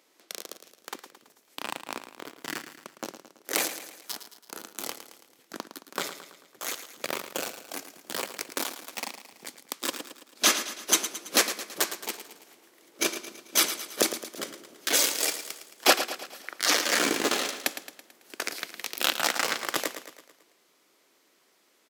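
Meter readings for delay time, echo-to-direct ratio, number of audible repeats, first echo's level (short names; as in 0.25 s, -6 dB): 0.11 s, -9.5 dB, 5, -11.0 dB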